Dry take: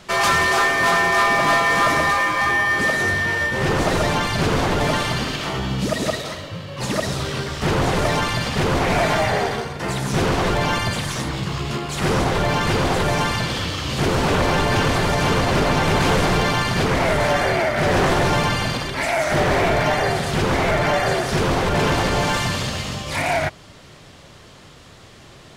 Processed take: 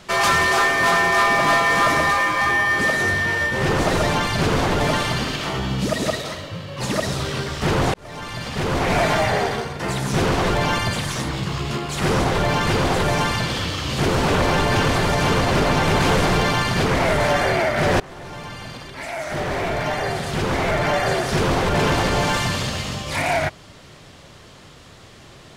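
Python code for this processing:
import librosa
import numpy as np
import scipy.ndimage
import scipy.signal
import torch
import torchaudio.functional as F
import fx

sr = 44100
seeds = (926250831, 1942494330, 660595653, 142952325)

y = fx.edit(x, sr, fx.fade_in_span(start_s=7.94, length_s=1.02),
    fx.fade_in_from(start_s=18.0, length_s=3.36, floor_db=-24.0), tone=tone)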